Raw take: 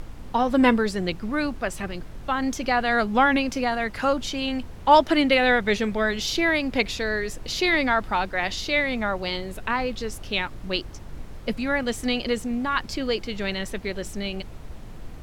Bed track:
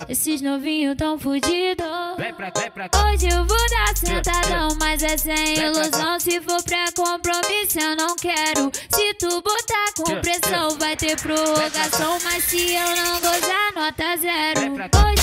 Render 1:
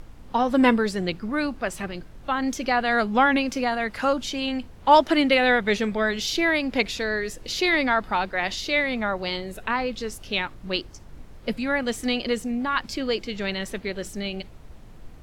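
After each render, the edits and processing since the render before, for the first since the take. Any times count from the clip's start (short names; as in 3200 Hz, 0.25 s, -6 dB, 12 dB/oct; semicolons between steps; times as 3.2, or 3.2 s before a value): noise print and reduce 6 dB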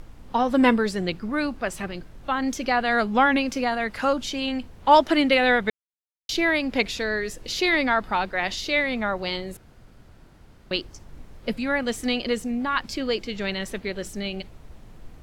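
5.7–6.29 mute; 9.57–10.71 room tone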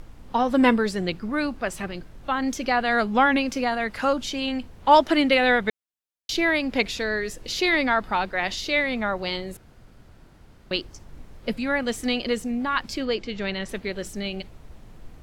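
13.05–13.69 air absorption 66 m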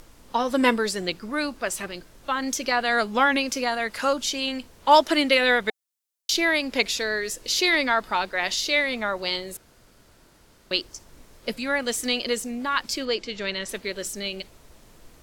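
tone controls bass -9 dB, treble +9 dB; notch 770 Hz, Q 12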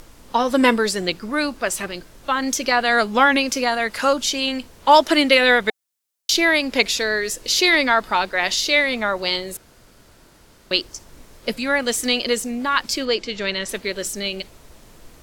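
gain +5 dB; limiter -2 dBFS, peak gain reduction 2.5 dB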